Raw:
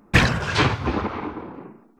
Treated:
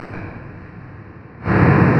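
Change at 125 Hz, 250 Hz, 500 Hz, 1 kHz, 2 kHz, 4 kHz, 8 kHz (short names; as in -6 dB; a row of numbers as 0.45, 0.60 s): +7.0 dB, +7.5 dB, +5.5 dB, +2.5 dB, -1.0 dB, under -15 dB, under -20 dB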